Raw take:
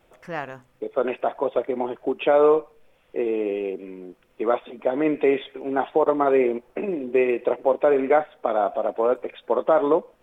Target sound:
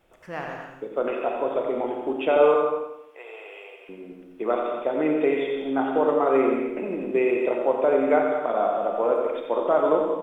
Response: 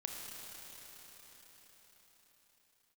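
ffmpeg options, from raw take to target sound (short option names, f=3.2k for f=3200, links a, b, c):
-filter_complex "[0:a]asettb=1/sr,asplit=3[a][b][c];[a]atrim=end=2.564[d];[b]atrim=start=2.56:end=3.89,asetpts=PTS-STARTPTS,afade=t=in:d=0.004:c=qsin,afade=t=out:st=1.326:d=0.004:c=qsin,highpass=f=750:w=0.5412,highpass=f=750:w=1.3066[e];[c]atrim=start=3.886[f];[d][e]acrossfade=d=0.004:c1=hsin:c2=qsin[g];[g][f]acrossfade=d=0.004:c1=qsin:c2=hsin,aecho=1:1:89|178|267|356|445|534:0.398|0.191|0.0917|0.044|0.0211|0.0101[h];[1:a]atrim=start_sample=2205,afade=t=out:st=0.32:d=0.01,atrim=end_sample=14553[i];[h][i]afir=irnorm=-1:irlink=0"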